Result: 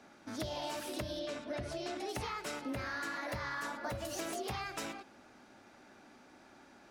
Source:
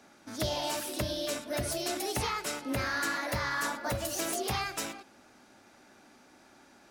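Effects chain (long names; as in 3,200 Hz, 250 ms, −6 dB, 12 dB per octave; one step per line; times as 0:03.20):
high-shelf EQ 6,000 Hz −10 dB
downward compressor, threshold −36 dBFS, peak gain reduction 9 dB
0:01.19–0:02.09: high-frequency loss of the air 69 metres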